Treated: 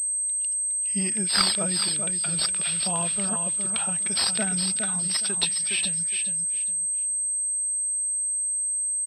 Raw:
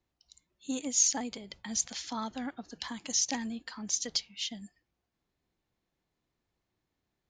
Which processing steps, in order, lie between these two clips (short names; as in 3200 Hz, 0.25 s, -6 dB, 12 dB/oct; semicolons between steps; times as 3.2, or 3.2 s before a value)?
speed glide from 71% -> 90%; high shelf 2600 Hz +8 dB; on a send: feedback echo 0.413 s, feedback 24%, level -6 dB; on the sum: pulse-width modulation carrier 8300 Hz; gain +4 dB